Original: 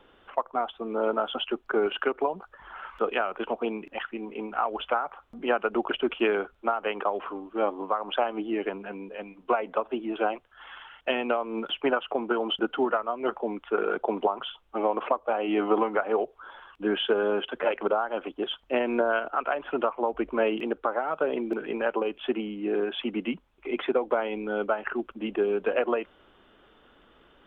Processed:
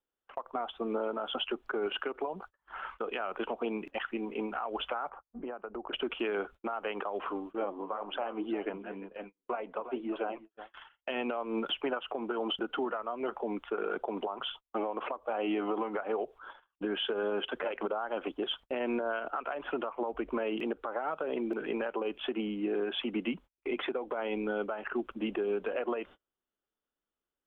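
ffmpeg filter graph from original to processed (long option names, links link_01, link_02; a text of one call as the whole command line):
ffmpeg -i in.wav -filter_complex "[0:a]asettb=1/sr,asplit=3[link_01][link_02][link_03];[link_01]atrim=end=5.094[link_04];[link_02]atrim=start=5.09:end=5.93,asetpts=PTS-STARTPTS,afade=type=in:duration=0.004:curve=qsin,afade=type=out:start_time=0.836:duration=0.004:curve=qsin,asubboost=boost=5:cutoff=100,acompressor=threshold=-34dB:ratio=20:attack=3.2:release=140:knee=1:detection=peak,lowpass=1300[link_05];[link_03]atrim=start=5.926[link_06];[link_04][link_05]acrossfade=duration=0.004:curve1=hsin:curve2=qsin[link_07];[link_07][link_06]acrossfade=duration=0.004:curve1=qsin:curve2=hsin,asettb=1/sr,asplit=3[link_08][link_09][link_10];[link_08]atrim=end=7.554[link_11];[link_09]atrim=start=7.55:end=10.74,asetpts=PTS-STARTPTS,afade=type=in:duration=0.004:curve=qsin,afade=type=out:start_time=3.186:duration=0.004:curve=qsin,lowpass=frequency=2900:poles=1,aecho=1:1:354:0.158,atrim=end_sample=140679,flanger=delay=0.9:depth=7.7:regen=70:speed=1.9:shape=triangular[link_12];[link_10]atrim=start=10.736[link_13];[link_11][link_12]acrossfade=duration=0.004:curve1=hsin:curve2=qsin[link_14];[link_14][link_13]acrossfade=duration=0.004:curve1=qsin:curve2=hsin,agate=range=-36dB:threshold=-44dB:ratio=16:detection=peak,acompressor=threshold=-27dB:ratio=6,alimiter=limit=-23.5dB:level=0:latency=1:release=83" out.wav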